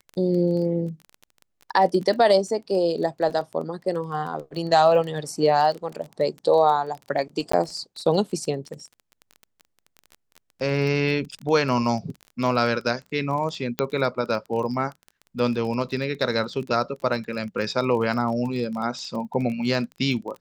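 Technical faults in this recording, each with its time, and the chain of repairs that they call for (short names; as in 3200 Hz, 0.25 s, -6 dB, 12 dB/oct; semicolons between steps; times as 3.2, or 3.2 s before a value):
crackle 23/s -31 dBFS
7.52–7.53 gap 14 ms
13.79 pop -8 dBFS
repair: de-click; interpolate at 7.52, 14 ms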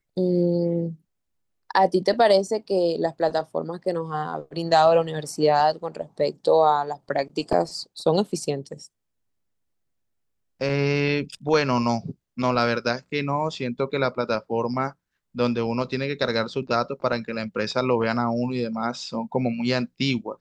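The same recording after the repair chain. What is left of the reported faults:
none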